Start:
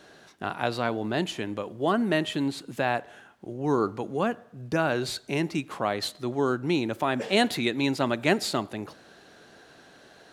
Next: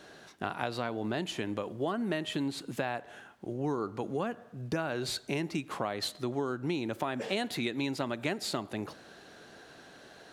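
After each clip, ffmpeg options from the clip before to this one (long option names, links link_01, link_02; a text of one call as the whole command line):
ffmpeg -i in.wav -af "acompressor=threshold=-29dB:ratio=6" out.wav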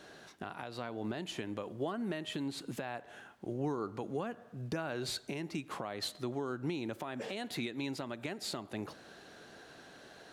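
ffmpeg -i in.wav -af "alimiter=level_in=1dB:limit=-24dB:level=0:latency=1:release=329,volume=-1dB,volume=-1.5dB" out.wav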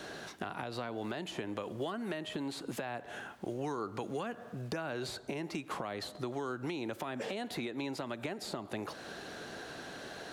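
ffmpeg -i in.wav -filter_complex "[0:a]acrossover=split=440|1300[link_01][link_02][link_03];[link_01]acompressor=threshold=-51dB:ratio=4[link_04];[link_02]acompressor=threshold=-50dB:ratio=4[link_05];[link_03]acompressor=threshold=-54dB:ratio=4[link_06];[link_04][link_05][link_06]amix=inputs=3:normalize=0,volume=9dB" out.wav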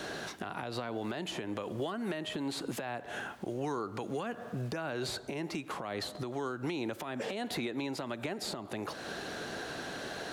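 ffmpeg -i in.wav -af "alimiter=level_in=7.5dB:limit=-24dB:level=0:latency=1:release=229,volume=-7.5dB,volume=5dB" out.wav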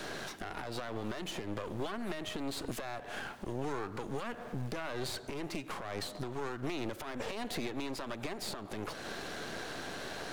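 ffmpeg -i in.wav -af "aeval=exprs='clip(val(0),-1,0.00355)':channel_layout=same,volume=1.5dB" out.wav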